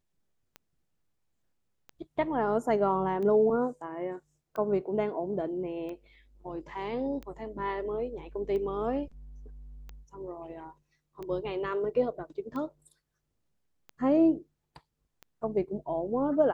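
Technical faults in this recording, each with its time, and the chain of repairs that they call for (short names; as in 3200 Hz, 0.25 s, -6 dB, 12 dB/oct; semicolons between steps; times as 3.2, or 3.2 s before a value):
tick 45 rpm -28 dBFS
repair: de-click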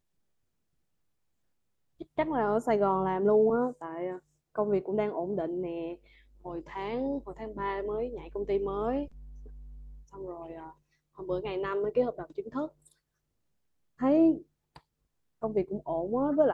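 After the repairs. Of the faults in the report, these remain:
none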